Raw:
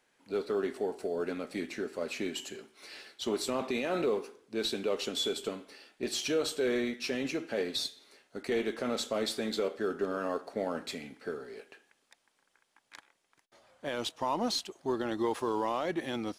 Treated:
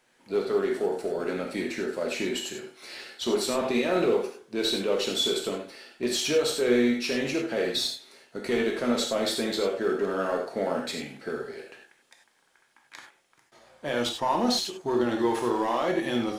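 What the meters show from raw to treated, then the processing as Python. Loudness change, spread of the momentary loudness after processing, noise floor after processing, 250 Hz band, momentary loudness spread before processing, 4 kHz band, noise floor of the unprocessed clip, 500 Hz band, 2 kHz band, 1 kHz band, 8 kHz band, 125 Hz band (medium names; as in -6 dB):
+6.5 dB, 11 LU, -66 dBFS, +7.0 dB, 10 LU, +6.5 dB, -76 dBFS, +6.0 dB, +6.5 dB, +6.0 dB, +6.5 dB, +6.0 dB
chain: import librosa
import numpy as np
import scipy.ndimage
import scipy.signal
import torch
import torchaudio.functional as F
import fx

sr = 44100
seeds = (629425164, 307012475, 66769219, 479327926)

p1 = np.clip(10.0 ** (28.5 / 20.0) * x, -1.0, 1.0) / 10.0 ** (28.5 / 20.0)
p2 = x + F.gain(torch.from_numpy(p1), -4.0).numpy()
y = fx.rev_gated(p2, sr, seeds[0], gate_ms=120, shape='flat', drr_db=1.0)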